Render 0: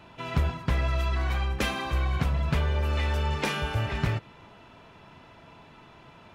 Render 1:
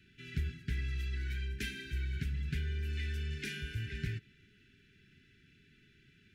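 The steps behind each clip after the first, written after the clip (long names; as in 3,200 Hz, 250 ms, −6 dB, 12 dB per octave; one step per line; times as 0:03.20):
Chebyshev band-stop filter 410–1,500 Hz, order 5
parametric band 320 Hz −6 dB 0.54 octaves
level −9 dB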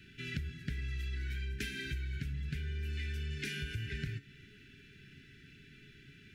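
tuned comb filter 140 Hz, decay 0.35 s, harmonics all, mix 60%
downward compressor, threshold −49 dBFS, peak gain reduction 13 dB
level +13.5 dB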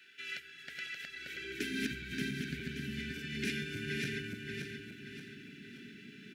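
feedback delay that plays each chunk backwards 289 ms, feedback 64%, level −0.5 dB
single-tap delay 664 ms −17.5 dB
high-pass filter sweep 750 Hz → 230 Hz, 0:01.07–0:01.79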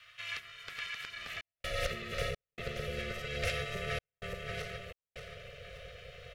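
gate pattern "xxxxxx.xxx." 64 BPM −60 dB
ring modulation 290 Hz
level +5 dB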